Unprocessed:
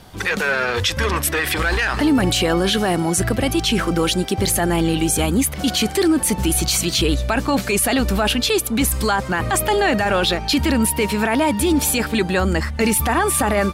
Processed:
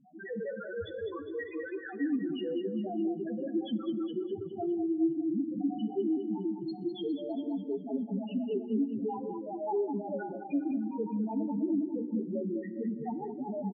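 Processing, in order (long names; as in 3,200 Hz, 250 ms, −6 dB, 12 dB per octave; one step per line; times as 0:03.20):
variable-slope delta modulation 32 kbit/s
high-pass filter 270 Hz 12 dB per octave
low-shelf EQ 420 Hz +9.5 dB
mains-hum notches 60/120/180/240/300/360/420/480 Hz
downward compressor 8 to 1, threshold −19 dBFS, peak gain reduction 10 dB
flanger 0.23 Hz, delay 8.1 ms, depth 3 ms, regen −65%
spectral peaks only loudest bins 1
repeating echo 204 ms, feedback 45%, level −7 dB
feedback delay network reverb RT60 1.4 s, low-frequency decay 1.5×, high-frequency decay 0.75×, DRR 15 dB
phaser whose notches keep moving one way rising 1.8 Hz
level +1.5 dB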